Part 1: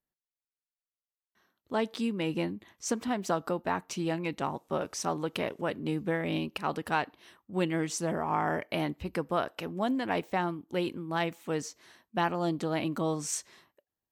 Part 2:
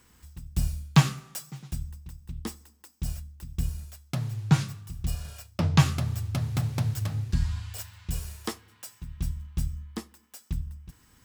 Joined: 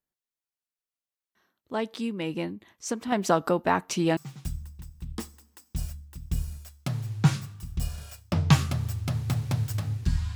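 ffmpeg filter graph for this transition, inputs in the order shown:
-filter_complex "[0:a]asettb=1/sr,asplit=3[a][b][c];[a]atrim=end=3.124[d];[b]atrim=start=3.12:end=4.17,asetpts=PTS-STARTPTS,afade=t=in:d=0.004:c=qsin,afade=t=out:st=1.046:d=0.004:c=qsin,acontrast=80[e];[c]atrim=start=4.166[f];[d][e]acrossfade=d=0.004:c1=hsin:c2=qsin[g];[g][f]acrossfade=d=0.004:c1=qsin:c2=hsin,apad=whole_dur=10.35,atrim=end=10.35,atrim=end=4.172[h];[1:a]atrim=start=1.438:end=7.62[i];[h][i]acrossfade=d=0.004:c1=hsin:c2=hsin"

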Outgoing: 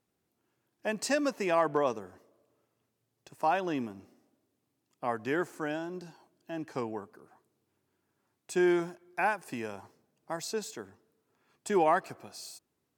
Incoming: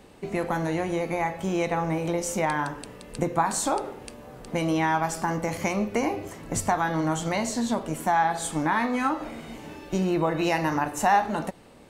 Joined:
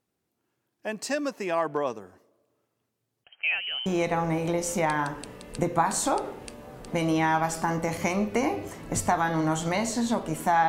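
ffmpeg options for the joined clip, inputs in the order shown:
-filter_complex "[0:a]asettb=1/sr,asplit=3[a][b][c];[a]atrim=end=3.244[d];[b]atrim=start=3.24:end=3.86,asetpts=PTS-STARTPTS,afade=t=in:d=0.004:c=qsin,afade=t=out:st=0.616:d=0.004:c=qsin,lowpass=f=2.8k:t=q:w=0.5098,lowpass=f=2.8k:t=q:w=0.6013,lowpass=f=2.8k:t=q:w=0.9,lowpass=f=2.8k:t=q:w=2.563,afreqshift=-3300[e];[c]atrim=start=3.856[f];[d][e]acrossfade=d=0.004:c1=hsin:c2=qsin[g];[g][f]acrossfade=d=0.004:c1=qsin:c2=hsin,apad=whole_dur=10.68,atrim=end=10.68,atrim=end=3.862[h];[1:a]atrim=start=1.458:end=8.28[i];[h][i]acrossfade=d=0.004:c1=hsin:c2=hsin"

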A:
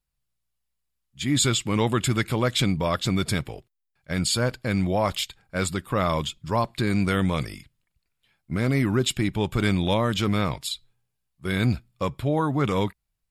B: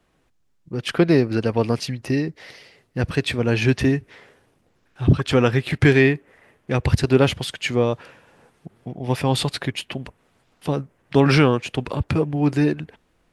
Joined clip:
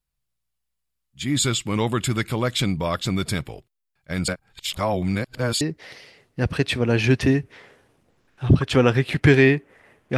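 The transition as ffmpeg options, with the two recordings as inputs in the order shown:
-filter_complex "[0:a]apad=whole_dur=10.17,atrim=end=10.17,asplit=2[a][b];[a]atrim=end=4.282[c];[b]atrim=start=4.278:end=5.612,asetpts=PTS-STARTPTS,areverse[d];[1:a]atrim=start=2.188:end=6.75[e];[c][d]acrossfade=d=0.004:c1=hsin:c2=hsin[f];[f][e]acrossfade=d=0.004:c1=hsin:c2=hsin"

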